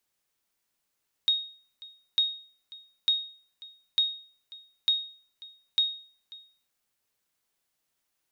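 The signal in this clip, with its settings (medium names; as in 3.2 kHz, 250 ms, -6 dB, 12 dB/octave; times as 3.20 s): sonar ping 3.74 kHz, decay 0.45 s, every 0.90 s, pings 6, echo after 0.54 s, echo -21.5 dB -16.5 dBFS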